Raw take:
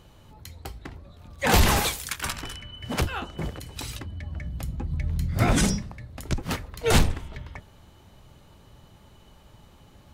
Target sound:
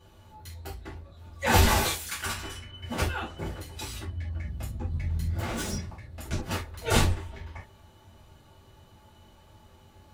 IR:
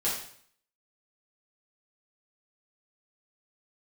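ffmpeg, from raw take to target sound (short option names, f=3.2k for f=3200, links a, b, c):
-filter_complex "[0:a]asettb=1/sr,asplit=3[a][b][c];[a]atrim=end=5.294[d];[b]atrim=start=5.29:end=5.72,asetpts=PTS-STARTPTS,afade=t=in:d=0.004:c=qsin,afade=t=out:st=0.426:d=0.004:c=qsin,asoftclip=type=hard:threshold=-28dB[e];[c]atrim=start=5.716[f];[d][e]acrossfade=d=0.004:c1=hsin:c2=qsin[g];[g][f]acrossfade=d=0.004:c1=qsin:c2=hsin[h];[1:a]atrim=start_sample=2205,atrim=end_sample=6615,asetrate=79380,aresample=44100[i];[h][i]afir=irnorm=-1:irlink=0,volume=-4.5dB"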